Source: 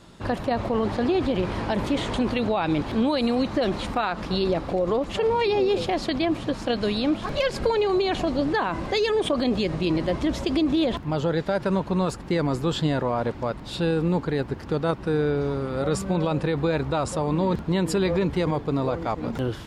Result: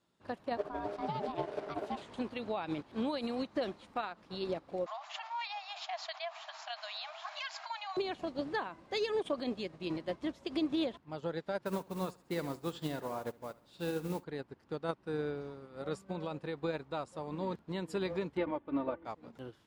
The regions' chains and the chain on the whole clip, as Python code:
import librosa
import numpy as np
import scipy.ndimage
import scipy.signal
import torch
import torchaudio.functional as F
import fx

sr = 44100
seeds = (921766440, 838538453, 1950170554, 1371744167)

y = fx.chain(x, sr, fx.peak_eq(hz=91.0, db=12.5, octaves=1.4),
    fx.ring_mod(carrier_hz=510.0), at=(0.57, 2.02))
y = fx.chain(y, sr, fx.brickwall_bandpass(low_hz=610.0, high_hz=7400.0),
    fx.env_flatten(amount_pct=70), at=(4.86, 7.97))
y = fx.chain(y, sr, fx.mod_noise(seeds[0], snr_db=21),
    fx.echo_feedback(ms=70, feedback_pct=45, wet_db=-11), at=(11.65, 14.24))
y = fx.chain(y, sr, fx.lowpass(hz=2900.0, slope=24),
    fx.comb(ms=3.4, depth=0.73), at=(18.37, 19.05))
y = fx.highpass(y, sr, hz=120.0, slope=6)
y = fx.low_shelf(y, sr, hz=160.0, db=-4.0)
y = fx.upward_expand(y, sr, threshold_db=-33.0, expansion=2.5)
y = y * librosa.db_to_amplitude(-7.5)